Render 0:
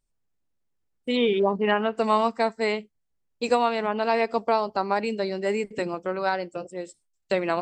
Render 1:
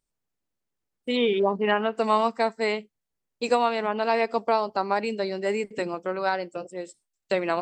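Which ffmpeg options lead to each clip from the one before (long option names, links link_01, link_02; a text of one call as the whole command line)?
ffmpeg -i in.wav -af "lowshelf=frequency=110:gain=-9" out.wav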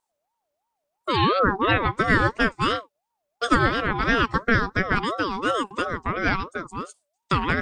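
ffmpeg -i in.wav -af "aeval=exprs='val(0)*sin(2*PI*760*n/s+760*0.25/2.9*sin(2*PI*2.9*n/s))':channel_layout=same,volume=5.5dB" out.wav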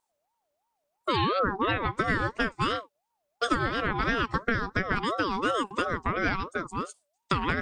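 ffmpeg -i in.wav -af "acompressor=threshold=-22dB:ratio=6" out.wav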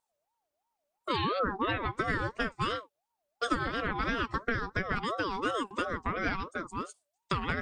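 ffmpeg -i in.wav -af "flanger=delay=1.4:depth=3:regen=-61:speed=0.4:shape=triangular" out.wav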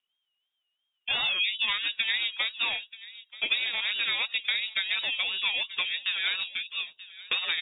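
ffmpeg -i in.wav -filter_complex "[0:a]asplit=2[link_01][link_02];[link_02]adelay=932.9,volume=-16dB,highshelf=frequency=4000:gain=-21[link_03];[link_01][link_03]amix=inputs=2:normalize=0,lowpass=frequency=3200:width_type=q:width=0.5098,lowpass=frequency=3200:width_type=q:width=0.6013,lowpass=frequency=3200:width_type=q:width=0.9,lowpass=frequency=3200:width_type=q:width=2.563,afreqshift=-3800,volume=2.5dB" out.wav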